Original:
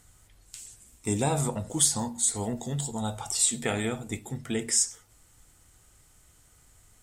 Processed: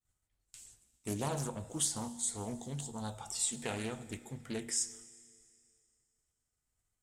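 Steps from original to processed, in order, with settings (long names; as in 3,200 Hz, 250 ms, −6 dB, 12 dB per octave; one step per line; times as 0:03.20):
downward expander −46 dBFS
four-comb reverb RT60 2.4 s, combs from 26 ms, DRR 16 dB
highs frequency-modulated by the lows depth 0.36 ms
level −9 dB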